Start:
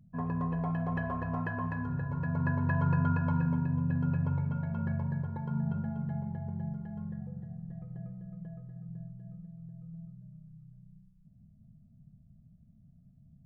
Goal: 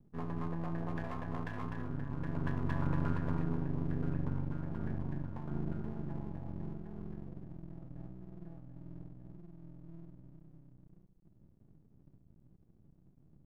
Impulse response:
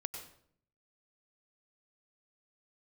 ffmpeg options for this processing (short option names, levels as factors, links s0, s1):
-af "lowpass=f=1200:p=1,aeval=exprs='max(val(0),0)':c=same,volume=0.891"